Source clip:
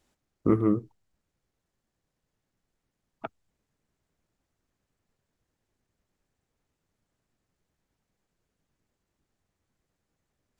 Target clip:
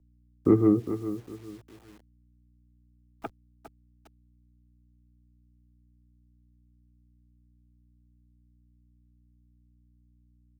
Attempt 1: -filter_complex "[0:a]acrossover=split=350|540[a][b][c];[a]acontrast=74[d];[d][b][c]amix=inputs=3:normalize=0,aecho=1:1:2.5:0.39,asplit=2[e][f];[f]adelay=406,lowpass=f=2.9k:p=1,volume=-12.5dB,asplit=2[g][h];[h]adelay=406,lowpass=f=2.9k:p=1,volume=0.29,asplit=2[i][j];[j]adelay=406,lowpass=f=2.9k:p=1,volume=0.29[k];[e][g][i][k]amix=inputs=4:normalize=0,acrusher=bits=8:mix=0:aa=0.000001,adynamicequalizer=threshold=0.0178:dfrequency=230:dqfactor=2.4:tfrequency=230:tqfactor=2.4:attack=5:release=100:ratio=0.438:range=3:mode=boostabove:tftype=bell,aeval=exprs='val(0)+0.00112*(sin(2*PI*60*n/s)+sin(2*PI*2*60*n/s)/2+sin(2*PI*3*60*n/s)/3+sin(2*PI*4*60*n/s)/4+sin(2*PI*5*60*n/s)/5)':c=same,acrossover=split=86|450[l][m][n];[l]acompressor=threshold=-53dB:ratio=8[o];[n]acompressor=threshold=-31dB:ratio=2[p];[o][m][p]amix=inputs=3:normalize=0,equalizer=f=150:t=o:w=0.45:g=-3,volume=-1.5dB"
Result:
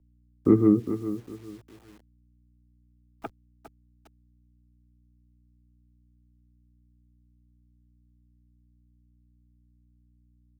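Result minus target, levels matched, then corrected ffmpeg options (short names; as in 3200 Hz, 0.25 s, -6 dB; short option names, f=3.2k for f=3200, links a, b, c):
1000 Hz band -3.5 dB
-filter_complex "[0:a]acrossover=split=350|540[a][b][c];[a]acontrast=74[d];[d][b][c]amix=inputs=3:normalize=0,aecho=1:1:2.5:0.39,asplit=2[e][f];[f]adelay=406,lowpass=f=2.9k:p=1,volume=-12.5dB,asplit=2[g][h];[h]adelay=406,lowpass=f=2.9k:p=1,volume=0.29,asplit=2[i][j];[j]adelay=406,lowpass=f=2.9k:p=1,volume=0.29[k];[e][g][i][k]amix=inputs=4:normalize=0,acrusher=bits=8:mix=0:aa=0.000001,adynamicequalizer=threshold=0.0178:dfrequency=710:dqfactor=2.4:tfrequency=710:tqfactor=2.4:attack=5:release=100:ratio=0.438:range=3:mode=boostabove:tftype=bell,aeval=exprs='val(0)+0.00112*(sin(2*PI*60*n/s)+sin(2*PI*2*60*n/s)/2+sin(2*PI*3*60*n/s)/3+sin(2*PI*4*60*n/s)/4+sin(2*PI*5*60*n/s)/5)':c=same,acrossover=split=86|450[l][m][n];[l]acompressor=threshold=-53dB:ratio=8[o];[n]acompressor=threshold=-31dB:ratio=2[p];[o][m][p]amix=inputs=3:normalize=0,equalizer=f=150:t=o:w=0.45:g=-3,volume=-1.5dB"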